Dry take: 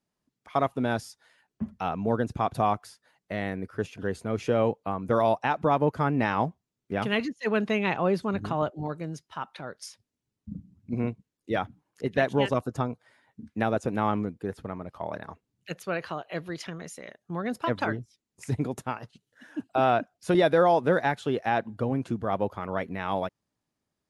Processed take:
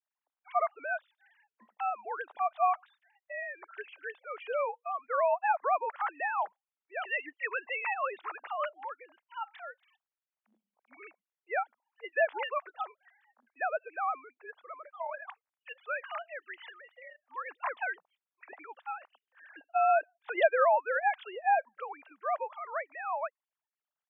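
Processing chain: formants replaced by sine waves; high-pass 710 Hz 24 dB/octave

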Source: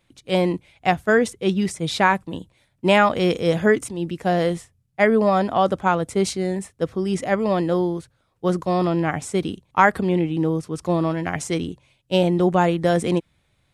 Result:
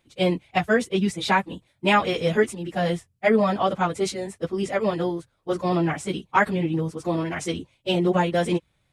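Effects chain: dynamic bell 2.9 kHz, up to +4 dB, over -38 dBFS, Q 1; plain phase-vocoder stretch 0.65×

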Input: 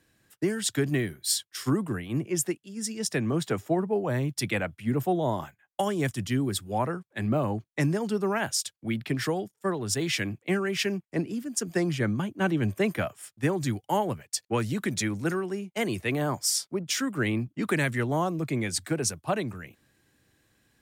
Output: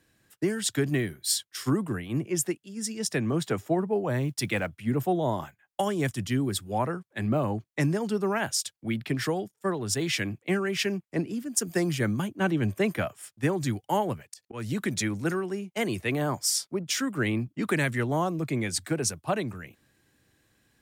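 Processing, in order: 4.20–4.71 s: block-companded coder 7-bit; 11.54–12.27 s: treble shelf 11 kHz -> 6.3 kHz +12 dB; 14.31–14.72 s: slow attack 195 ms

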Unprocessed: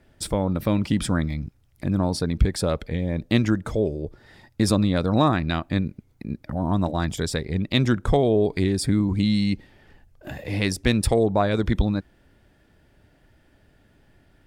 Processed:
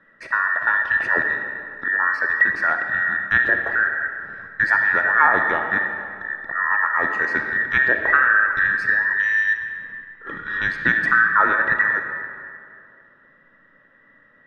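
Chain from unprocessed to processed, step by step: every band turned upside down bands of 2 kHz; low-pass 1.4 kHz 12 dB/octave; bass shelf 90 Hz -10 dB; band-stop 750 Hz, Q 12; algorithmic reverb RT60 2.4 s, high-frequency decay 0.65×, pre-delay 5 ms, DRR 4.5 dB; trim +6.5 dB

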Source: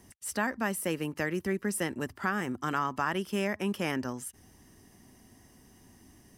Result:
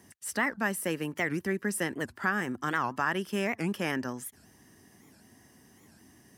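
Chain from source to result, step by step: high-pass 100 Hz; peaking EQ 1.7 kHz +5.5 dB 0.29 oct; warped record 78 rpm, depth 250 cents

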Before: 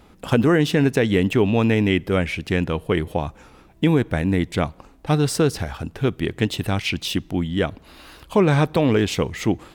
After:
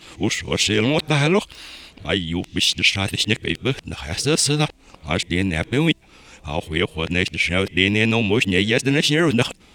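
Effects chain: reverse the whole clip; high-order bell 4.4 kHz +11 dB 2.5 oct; trim -1.5 dB

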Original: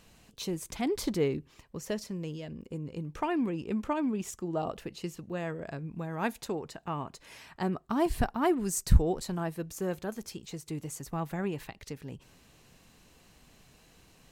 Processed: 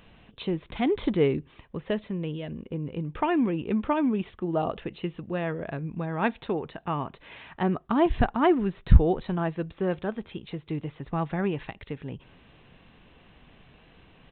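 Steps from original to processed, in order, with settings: resampled via 8 kHz; trim +5.5 dB

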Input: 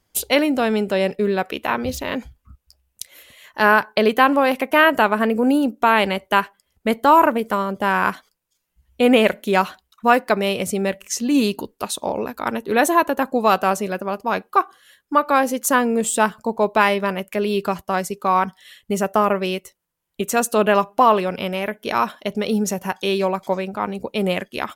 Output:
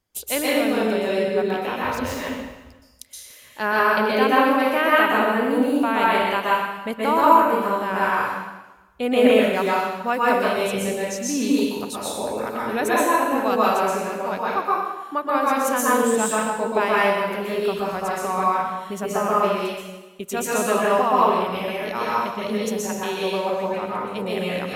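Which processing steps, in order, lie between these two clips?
plate-style reverb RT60 1.1 s, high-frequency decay 0.95×, pre-delay 110 ms, DRR -6.5 dB; trim -9 dB

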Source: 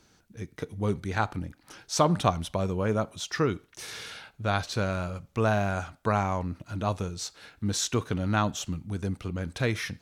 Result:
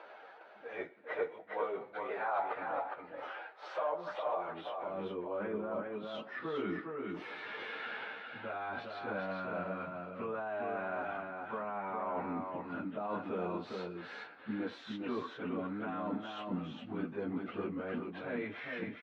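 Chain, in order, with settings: three-band isolator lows -12 dB, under 480 Hz, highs -17 dB, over 4 kHz; plain phase-vocoder stretch 1.9×; peak limiter -27 dBFS, peak gain reduction 11.5 dB; reverse; compression 6:1, threshold -45 dBFS, peak gain reduction 12.5 dB; reverse; high-pass sweep 580 Hz -> 240 Hz, 4.22–4.99 s; gain riding 2 s; distance through air 500 m; on a send: delay 409 ms -4 dB; on the sum: trim +8.5 dB

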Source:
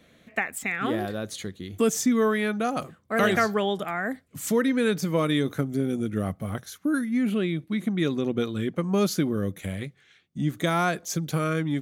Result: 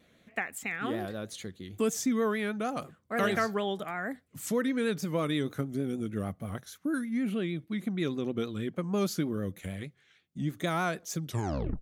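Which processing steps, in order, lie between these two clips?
tape stop on the ending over 0.58 s; vibrato 6.4 Hz 67 cents; trim -6 dB

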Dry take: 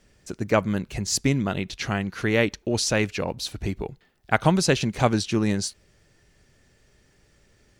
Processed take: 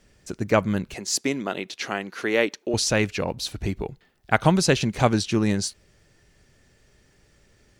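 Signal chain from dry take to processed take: 0.94–2.74 s: Chebyshev high-pass 350 Hz, order 2; trim +1 dB

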